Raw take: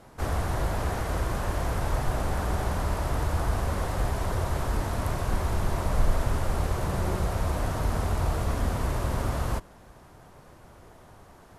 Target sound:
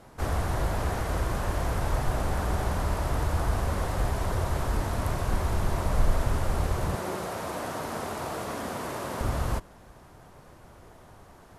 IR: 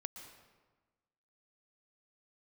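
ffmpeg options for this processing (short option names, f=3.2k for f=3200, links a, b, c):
-filter_complex "[0:a]asettb=1/sr,asplit=3[a][b][c];[a]atrim=end=6.954[d];[b]atrim=start=6.95:end=9.21,asetpts=PTS-STARTPTS,afade=t=in:d=0.004:c=qsin,afade=t=out:st=2.256:d=0.004:c=qsin,highpass=230[e];[c]atrim=start=9.206[f];[d][e]acrossfade=d=0.004:c1=hsin:c2=qsin[g];[g][f]acrossfade=d=0.004:c1=qsin:c2=hsin"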